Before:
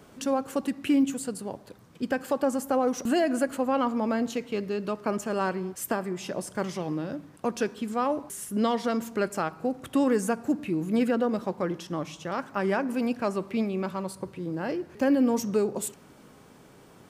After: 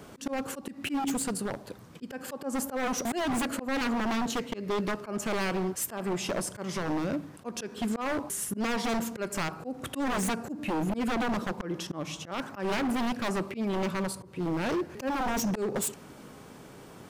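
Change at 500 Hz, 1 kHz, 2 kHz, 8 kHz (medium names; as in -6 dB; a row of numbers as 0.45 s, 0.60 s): -5.5 dB, -2.0 dB, +1.0 dB, +3.0 dB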